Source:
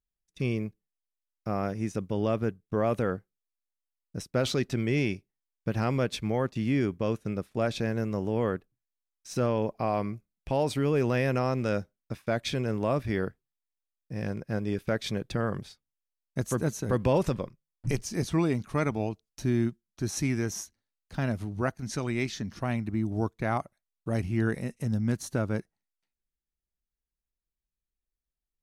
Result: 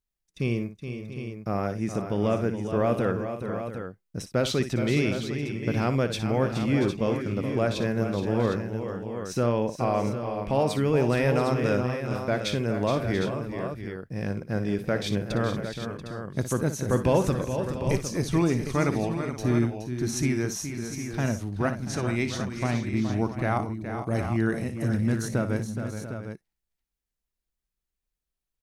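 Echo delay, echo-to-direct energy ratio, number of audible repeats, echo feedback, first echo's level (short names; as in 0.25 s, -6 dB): 59 ms, -4.0 dB, 5, no steady repeat, -11.5 dB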